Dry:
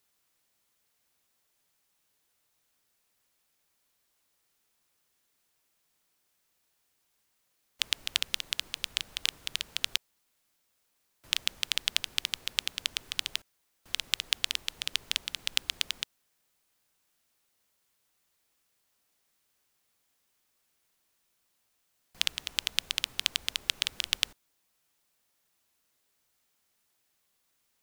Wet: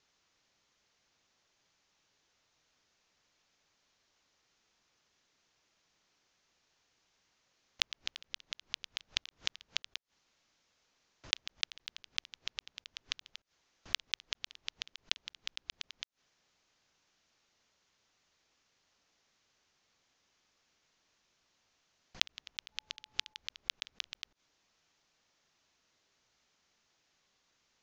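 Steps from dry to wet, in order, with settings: block floating point 7-bit; steep low-pass 6800 Hz 72 dB/oct; in parallel at -2 dB: limiter -10 dBFS, peak gain reduction 8 dB; on the sum: flipped gate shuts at -16 dBFS, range -25 dB; 22.71–23.37 whine 860 Hz -72 dBFS; gain -1 dB

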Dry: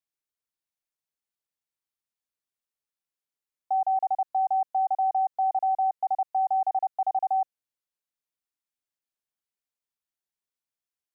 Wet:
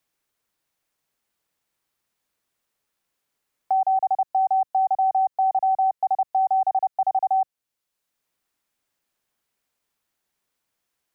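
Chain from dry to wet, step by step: three-band squash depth 40%; gain +4 dB

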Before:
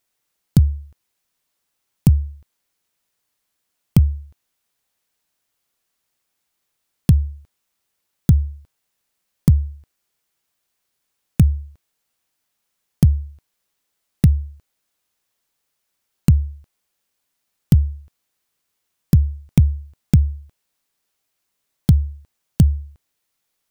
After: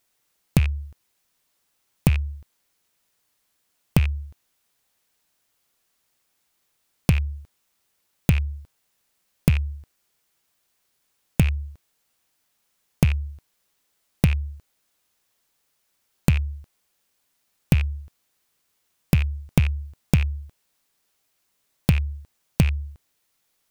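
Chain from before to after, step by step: rattling part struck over -14 dBFS, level -12 dBFS; compressor 4:1, threshold -20 dBFS, peak gain reduction 10.5 dB; gain +3.5 dB

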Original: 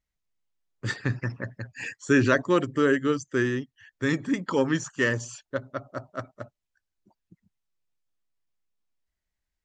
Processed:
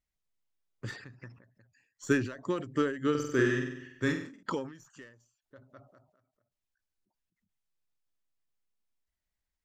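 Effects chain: tracing distortion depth 0.025 ms; 3.1–4.43 flutter echo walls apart 8.1 m, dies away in 0.78 s; ending taper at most 100 dB/s; gain -3 dB

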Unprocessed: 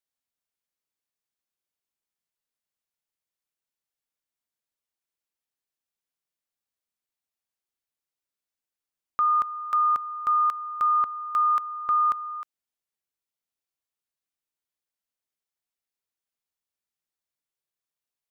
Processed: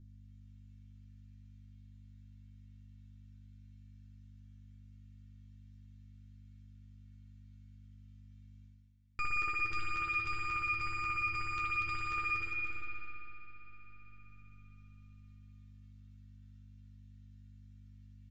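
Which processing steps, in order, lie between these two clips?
minimum comb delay 2.2 ms; downsampling 16000 Hz; on a send: bouncing-ball echo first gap 0.24 s, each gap 0.7×, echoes 5; on the sum: spring tank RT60 3 s, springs 57 ms, chirp 25 ms, DRR -6.5 dB; hum 50 Hz, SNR 25 dB; resonator 110 Hz, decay 0.18 s, harmonics all, mix 90%; reverse; upward compressor, threshold -43 dBFS; reverse; band shelf 720 Hz -10.5 dB

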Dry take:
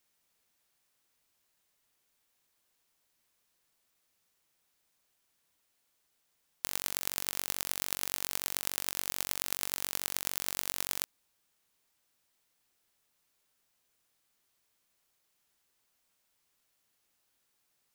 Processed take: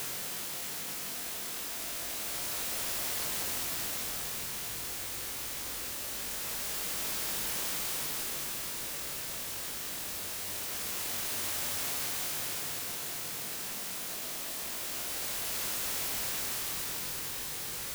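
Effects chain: buzz 50 Hz, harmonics 14, -54 dBFS -1 dB/oct; Paulstretch 40×, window 0.10 s, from 8.7

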